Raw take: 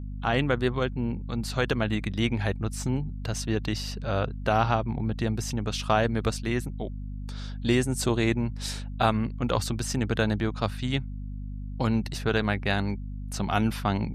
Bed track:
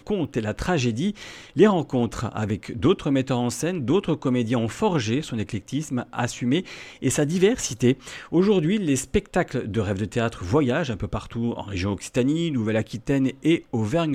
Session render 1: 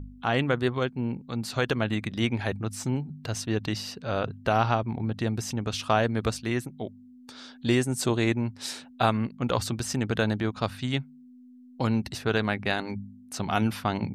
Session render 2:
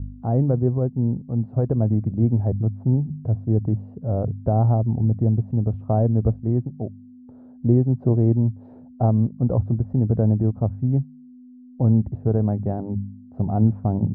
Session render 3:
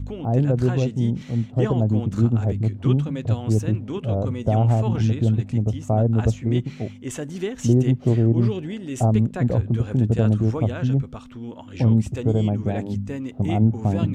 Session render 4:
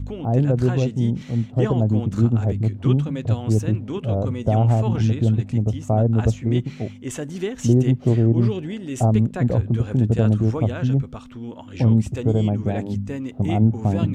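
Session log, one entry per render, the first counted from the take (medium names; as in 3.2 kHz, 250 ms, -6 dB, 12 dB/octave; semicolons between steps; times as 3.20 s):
de-hum 50 Hz, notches 4
Chebyshev low-pass 690 Hz, order 3; peaking EQ 95 Hz +12.5 dB 2.8 oct
add bed track -9 dB
trim +1 dB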